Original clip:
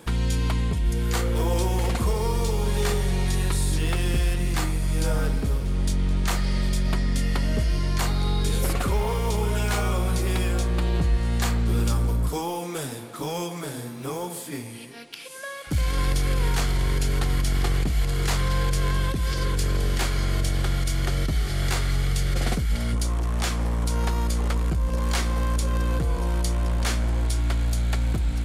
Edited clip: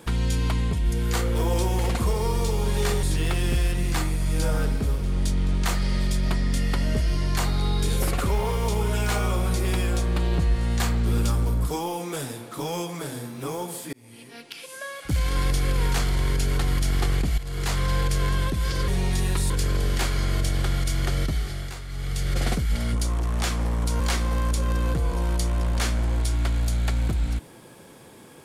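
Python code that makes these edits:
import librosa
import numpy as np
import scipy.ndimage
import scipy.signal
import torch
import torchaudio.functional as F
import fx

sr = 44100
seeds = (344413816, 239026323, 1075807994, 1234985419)

y = fx.edit(x, sr, fx.move(start_s=3.03, length_s=0.62, to_s=19.5),
    fx.fade_in_span(start_s=14.55, length_s=0.47),
    fx.fade_in_from(start_s=18.0, length_s=0.59, curve='qsin', floor_db=-13.0),
    fx.fade_down_up(start_s=21.24, length_s=1.13, db=-12.0, fade_s=0.49),
    fx.cut(start_s=24.0, length_s=1.05), tone=tone)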